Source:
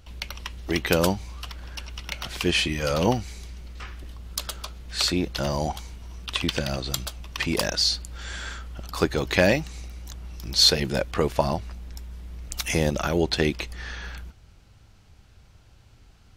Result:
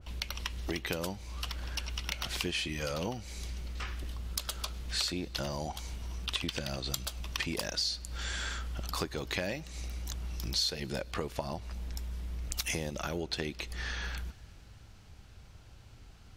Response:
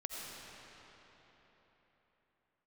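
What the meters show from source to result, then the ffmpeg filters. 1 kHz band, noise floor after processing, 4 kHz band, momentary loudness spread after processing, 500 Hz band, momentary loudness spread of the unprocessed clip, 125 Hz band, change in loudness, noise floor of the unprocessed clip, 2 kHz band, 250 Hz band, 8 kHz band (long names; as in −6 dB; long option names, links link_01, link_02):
−10.5 dB, −54 dBFS, −9.0 dB, 10 LU, −13.0 dB, 18 LU, −8.5 dB, −10.5 dB, −54 dBFS, −9.0 dB, −12.0 dB, −7.0 dB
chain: -filter_complex "[0:a]acompressor=threshold=-33dB:ratio=6,asplit=2[link_01][link_02];[1:a]atrim=start_sample=2205,asetrate=66150,aresample=44100,adelay=103[link_03];[link_02][link_03]afir=irnorm=-1:irlink=0,volume=-21.5dB[link_04];[link_01][link_04]amix=inputs=2:normalize=0,adynamicequalizer=threshold=0.00224:dfrequency=2300:dqfactor=0.7:tfrequency=2300:tqfactor=0.7:attack=5:release=100:ratio=0.375:range=1.5:mode=boostabove:tftype=highshelf"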